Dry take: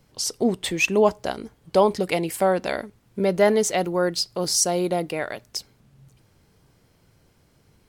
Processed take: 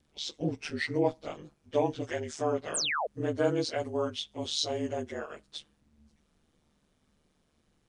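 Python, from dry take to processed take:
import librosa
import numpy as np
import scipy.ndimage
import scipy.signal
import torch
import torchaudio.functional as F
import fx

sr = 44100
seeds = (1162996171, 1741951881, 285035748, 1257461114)

y = fx.partial_stretch(x, sr, pct=88)
y = fx.spec_paint(y, sr, seeds[0], shape='fall', start_s=2.74, length_s=0.33, low_hz=490.0, high_hz=10000.0, level_db=-22.0)
y = y * np.sin(2.0 * np.pi * 75.0 * np.arange(len(y)) / sr)
y = y * librosa.db_to_amplitude(-5.5)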